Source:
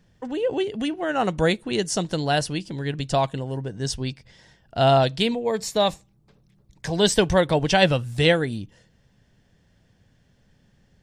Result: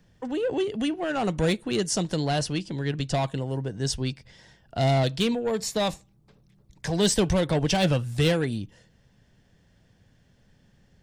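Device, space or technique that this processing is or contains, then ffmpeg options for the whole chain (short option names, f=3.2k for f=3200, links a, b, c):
one-band saturation: -filter_complex "[0:a]acrossover=split=330|4300[a][b][c];[b]asoftclip=type=tanh:threshold=-24dB[d];[a][d][c]amix=inputs=3:normalize=0,asettb=1/sr,asplit=3[e][f][g];[e]atrim=end=2.154[h];[f]atrim=start=2.15:end=3.15,asetpts=PTS-STARTPTS,afade=t=in:d=0.004:c=qsin,afade=t=out:st=0.996:d=0.004:c=qsin,lowpass=9k[i];[g]atrim=start=3.146[j];[h][i]acrossfade=d=0.004:c1=hsin:c2=qsin[k];[k][j]acrossfade=d=0.004:c1=qsin:c2=hsin"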